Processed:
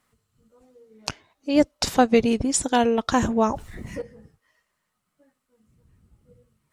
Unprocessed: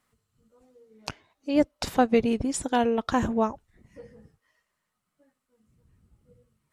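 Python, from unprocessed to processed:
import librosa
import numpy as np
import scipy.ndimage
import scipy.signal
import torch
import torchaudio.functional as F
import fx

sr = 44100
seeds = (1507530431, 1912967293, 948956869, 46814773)

y = fx.dynamic_eq(x, sr, hz=6100.0, q=0.82, threshold_db=-49.0, ratio=4.0, max_db=7)
y = fx.env_flatten(y, sr, amount_pct=50, at=(3.43, 4.02))
y = y * librosa.db_to_amplitude(3.5)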